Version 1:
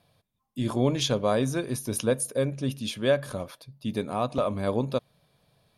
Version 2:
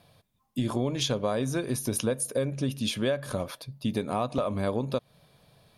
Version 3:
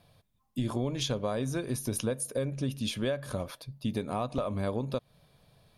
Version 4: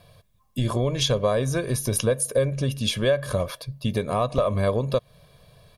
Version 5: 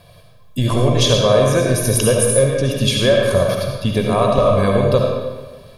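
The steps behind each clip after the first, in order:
downward compressor 5 to 1, threshold −31 dBFS, peak gain reduction 12.5 dB; level +6 dB
low-shelf EQ 68 Hz +10 dB; level −4 dB
comb filter 1.8 ms, depth 51%; level +7.5 dB
convolution reverb RT60 1.3 s, pre-delay 30 ms, DRR −0.5 dB; level +6 dB

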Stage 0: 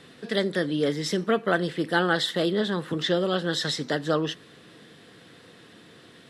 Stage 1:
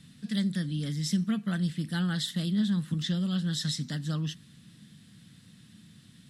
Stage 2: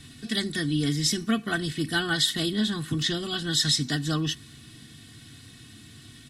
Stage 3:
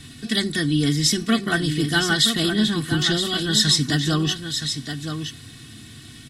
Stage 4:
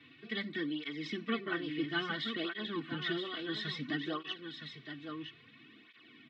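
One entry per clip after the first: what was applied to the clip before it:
drawn EQ curve 210 Hz 0 dB, 410 Hz −28 dB, 8,400 Hz −3 dB; level +3.5 dB
comb filter 2.7 ms, depth 90%; level +8 dB
single-tap delay 970 ms −8 dB; level +5.5 dB
soft clipping −5 dBFS, distortion −30 dB; loudspeaker in its box 340–2,800 Hz, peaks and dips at 740 Hz −9 dB, 1,600 Hz −6 dB, 2,300 Hz +5 dB; through-zero flanger with one copy inverted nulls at 0.59 Hz, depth 5.5 ms; level −6 dB

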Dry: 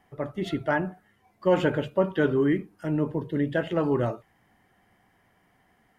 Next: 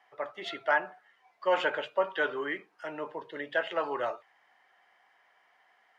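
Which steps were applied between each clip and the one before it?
high-pass filter 370 Hz 6 dB per octave
three-way crossover with the lows and the highs turned down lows −23 dB, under 540 Hz, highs −19 dB, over 5,900 Hz
level +2.5 dB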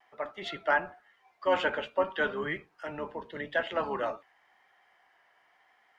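sub-octave generator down 1 octave, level −3 dB
pitch vibrato 0.91 Hz 34 cents

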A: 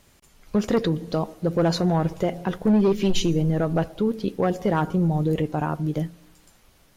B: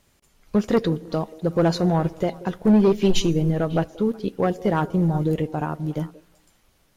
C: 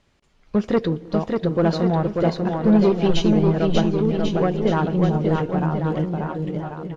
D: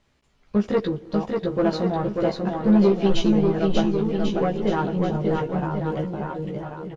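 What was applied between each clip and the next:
echo through a band-pass that steps 183 ms, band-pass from 420 Hz, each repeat 1.4 octaves, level −11.5 dB; expander for the loud parts 1.5 to 1, over −32 dBFS; level +3 dB
low-pass filter 4,500 Hz 12 dB per octave; on a send: bouncing-ball delay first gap 590 ms, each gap 0.85×, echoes 5
double-tracking delay 15 ms −3 dB; level −4 dB

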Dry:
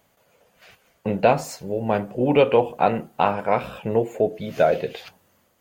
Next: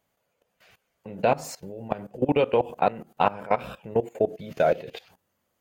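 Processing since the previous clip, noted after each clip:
output level in coarse steps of 19 dB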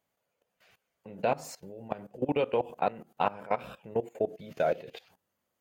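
low-shelf EQ 83 Hz −6.5 dB
level −6 dB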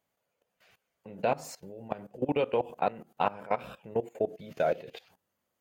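no processing that can be heard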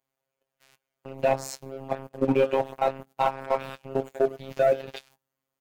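double-tracking delay 21 ms −11.5 dB
phases set to zero 134 Hz
leveller curve on the samples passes 2
level +2 dB

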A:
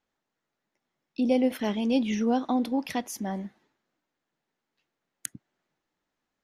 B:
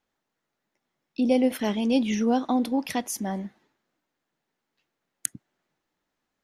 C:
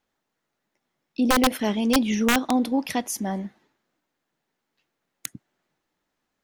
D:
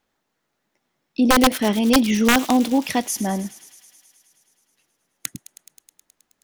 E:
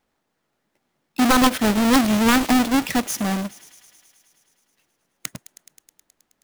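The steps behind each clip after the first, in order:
dynamic equaliser 9,400 Hz, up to +6 dB, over −54 dBFS, Q 0.96; level +2 dB
wrap-around overflow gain 14 dB; level +2 dB
delay with a high-pass on its return 106 ms, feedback 78%, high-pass 3,500 Hz, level −12.5 dB; level +4.5 dB
each half-wave held at its own peak; level −4 dB

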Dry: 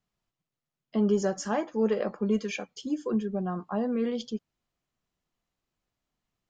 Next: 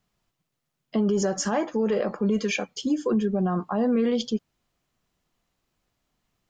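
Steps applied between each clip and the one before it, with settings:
brickwall limiter −24.5 dBFS, peak gain reduction 10 dB
level +8.5 dB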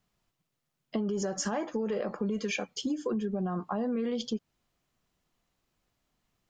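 downward compressor, threshold −26 dBFS, peak gain reduction 7 dB
level −2 dB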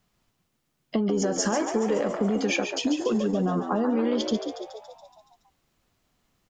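echo with shifted repeats 141 ms, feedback 60%, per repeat +71 Hz, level −8 dB
level +6 dB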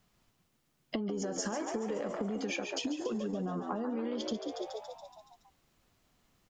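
downward compressor 10 to 1, threshold −32 dBFS, peak gain reduction 12 dB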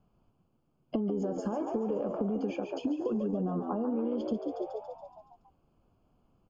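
moving average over 23 samples
level +4.5 dB

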